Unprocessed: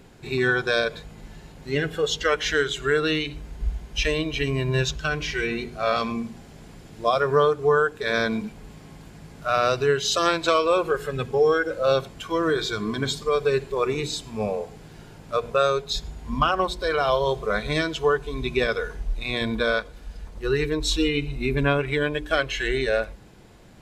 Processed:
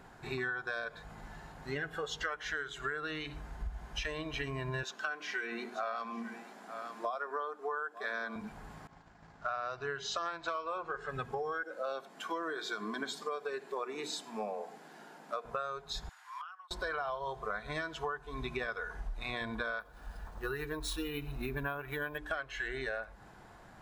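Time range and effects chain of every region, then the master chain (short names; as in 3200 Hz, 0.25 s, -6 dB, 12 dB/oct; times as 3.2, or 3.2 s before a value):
4.83–8.36 steep high-pass 190 Hz 72 dB/oct + echo 0.892 s -20.5 dB
8.87–11.09 LPF 6900 Hz 24 dB/oct + notches 50/100/150/200/250/300/350/400/450 Hz + expander -39 dBFS
11.63–15.45 steep high-pass 200 Hz + bell 1200 Hz -4.5 dB 1.1 oct
16.09–16.71 HPF 1200 Hz 24 dB/oct + flipped gate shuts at -32 dBFS, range -25 dB
19.8–22.18 notch 2100 Hz + careless resampling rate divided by 3×, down none, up hold
whole clip: band shelf 1100 Hz +10.5 dB; compressor 10:1, threshold -26 dBFS; gain -8 dB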